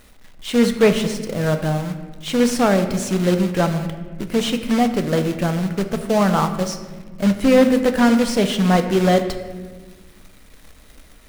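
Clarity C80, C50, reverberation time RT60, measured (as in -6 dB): 11.0 dB, 9.5 dB, 1.4 s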